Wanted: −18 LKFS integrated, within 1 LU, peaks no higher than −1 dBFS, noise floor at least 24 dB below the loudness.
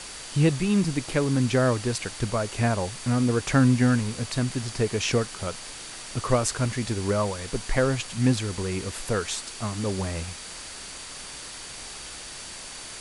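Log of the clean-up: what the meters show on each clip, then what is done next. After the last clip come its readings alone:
interfering tone 4,600 Hz; level of the tone −47 dBFS; background noise floor −40 dBFS; target noise floor −50 dBFS; integrated loudness −26.0 LKFS; sample peak −7.5 dBFS; target loudness −18.0 LKFS
→ notch filter 4,600 Hz, Q 30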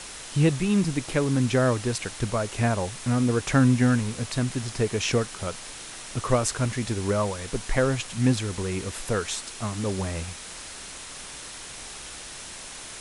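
interfering tone none found; background noise floor −40 dBFS; target noise floor −50 dBFS
→ noise reduction from a noise print 10 dB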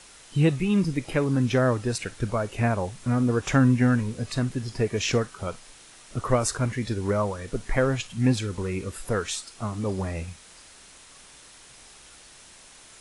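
background noise floor −50 dBFS; integrated loudness −26.0 LKFS; sample peak −8.0 dBFS; target loudness −18.0 LKFS
→ level +8 dB
brickwall limiter −1 dBFS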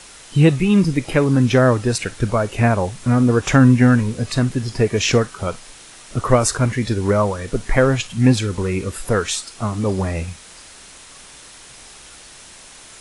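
integrated loudness −18.0 LKFS; sample peak −1.0 dBFS; background noise floor −42 dBFS

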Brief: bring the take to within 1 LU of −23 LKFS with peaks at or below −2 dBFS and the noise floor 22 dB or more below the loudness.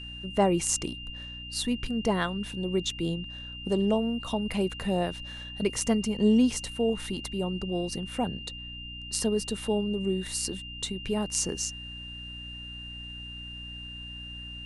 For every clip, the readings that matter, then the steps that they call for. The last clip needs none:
mains hum 60 Hz; hum harmonics up to 300 Hz; level of the hum −43 dBFS; interfering tone 2,800 Hz; level of the tone −40 dBFS; integrated loudness −30.0 LKFS; sample peak −9.0 dBFS; target loudness −23.0 LKFS
→ hum removal 60 Hz, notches 5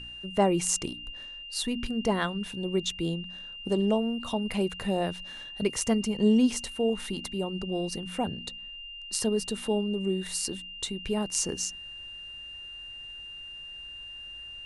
mains hum none found; interfering tone 2,800 Hz; level of the tone −40 dBFS
→ notch filter 2,800 Hz, Q 30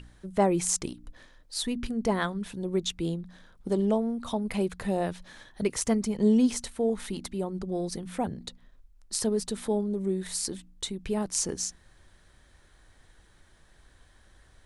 interfering tone none found; integrated loudness −29.5 LKFS; sample peak −9.5 dBFS; target loudness −23.0 LKFS
→ level +6.5 dB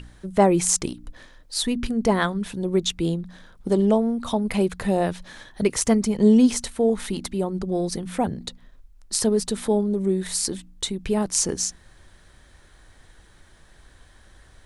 integrated loudness −23.0 LKFS; sample peak −3.0 dBFS; background noise floor −53 dBFS

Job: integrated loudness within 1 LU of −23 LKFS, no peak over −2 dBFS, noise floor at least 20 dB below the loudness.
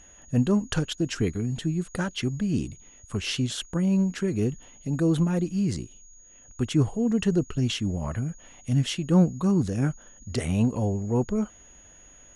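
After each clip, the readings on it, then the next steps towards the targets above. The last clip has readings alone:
interfering tone 6,700 Hz; level of the tone −51 dBFS; integrated loudness −26.5 LKFS; sample peak −9.5 dBFS; target loudness −23.0 LKFS
→ notch filter 6,700 Hz, Q 30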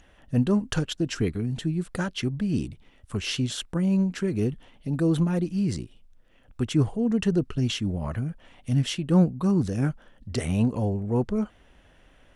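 interfering tone none found; integrated loudness −26.5 LKFS; sample peak −9.5 dBFS; target loudness −23.0 LKFS
→ level +3.5 dB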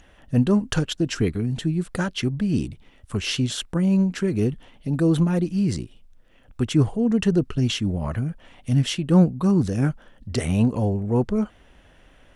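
integrated loudness −23.0 LKFS; sample peak −6.0 dBFS; background noise floor −54 dBFS

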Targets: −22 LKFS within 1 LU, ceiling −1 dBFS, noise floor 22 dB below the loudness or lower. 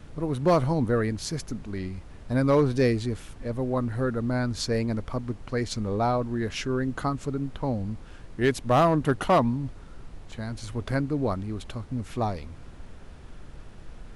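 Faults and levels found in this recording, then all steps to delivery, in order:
share of clipped samples 0.3%; peaks flattened at −14.0 dBFS; background noise floor −46 dBFS; target noise floor −49 dBFS; integrated loudness −27.0 LKFS; sample peak −14.0 dBFS; target loudness −22.0 LKFS
→ clipped peaks rebuilt −14 dBFS
noise reduction from a noise print 6 dB
level +5 dB

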